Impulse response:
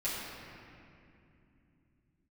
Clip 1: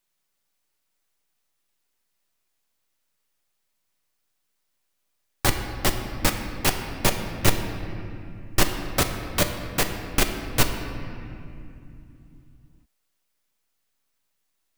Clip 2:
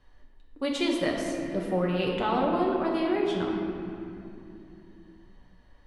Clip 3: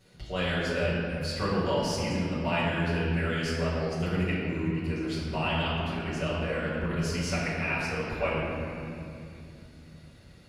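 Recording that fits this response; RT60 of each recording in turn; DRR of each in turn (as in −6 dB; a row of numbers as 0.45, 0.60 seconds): 3; 2.7, 2.7, 2.7 seconds; 4.0, −3.0, −10.5 decibels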